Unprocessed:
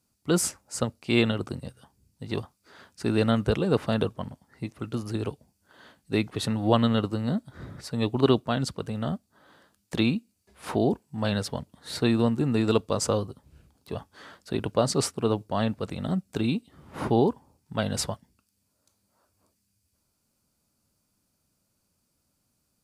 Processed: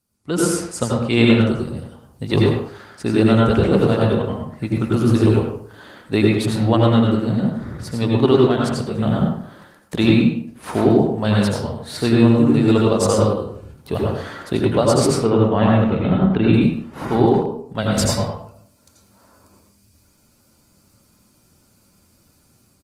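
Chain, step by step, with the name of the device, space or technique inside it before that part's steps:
0:15.06–0:16.54: inverse Chebyshev low-pass filter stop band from 9,200 Hz, stop band 60 dB
speakerphone in a meeting room (convolution reverb RT60 0.60 s, pre-delay 78 ms, DRR −1.5 dB; far-end echo of a speakerphone 100 ms, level −7 dB; automatic gain control gain up to 14 dB; level −1 dB; Opus 24 kbit/s 48,000 Hz)

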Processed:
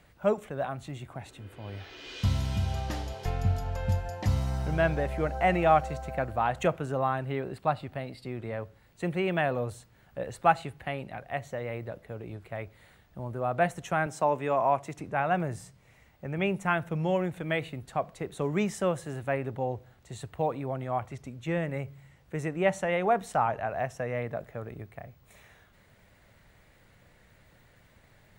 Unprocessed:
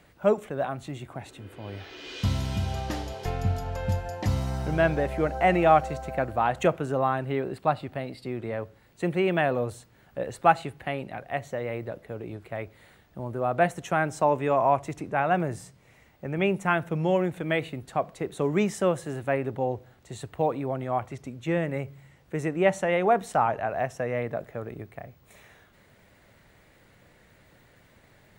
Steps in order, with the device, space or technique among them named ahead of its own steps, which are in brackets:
0:14.06–0:14.99: high-pass filter 150 Hz
low shelf boost with a cut just above (low-shelf EQ 82 Hz +6 dB; parametric band 330 Hz −3.5 dB 1.1 octaves)
level −2.5 dB

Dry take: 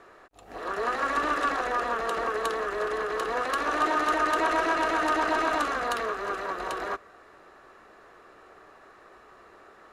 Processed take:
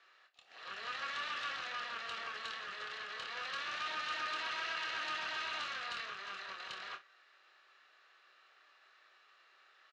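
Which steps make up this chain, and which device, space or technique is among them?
first difference
guitar amplifier (tube saturation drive 40 dB, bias 0.7; bass and treble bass −7 dB, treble +7 dB; loudspeaker in its box 90–4,000 Hz, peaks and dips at 280 Hz −7 dB, 440 Hz −6 dB, 700 Hz −4 dB, 1,000 Hz −5 dB, 2,800 Hz +3 dB)
ambience of single reflections 26 ms −6.5 dB, 58 ms −15.5 dB
level +6 dB

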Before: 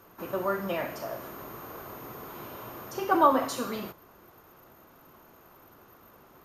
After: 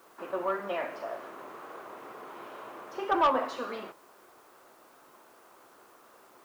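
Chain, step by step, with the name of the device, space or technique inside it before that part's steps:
tape answering machine (band-pass filter 370–2,900 Hz; soft clipping −17 dBFS, distortion −13 dB; tape wow and flutter; white noise bed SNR 30 dB)

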